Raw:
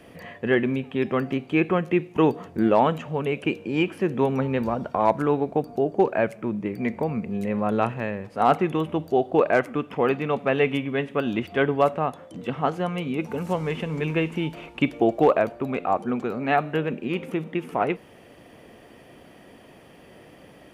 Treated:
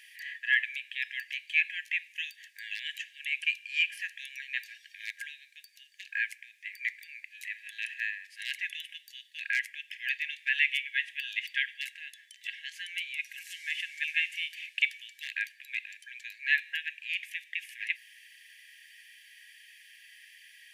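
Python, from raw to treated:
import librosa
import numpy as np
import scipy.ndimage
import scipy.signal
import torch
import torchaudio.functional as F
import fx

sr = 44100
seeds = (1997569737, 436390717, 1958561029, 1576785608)

y = fx.brickwall_highpass(x, sr, low_hz=1600.0)
y = y * 10.0 ** (3.5 / 20.0)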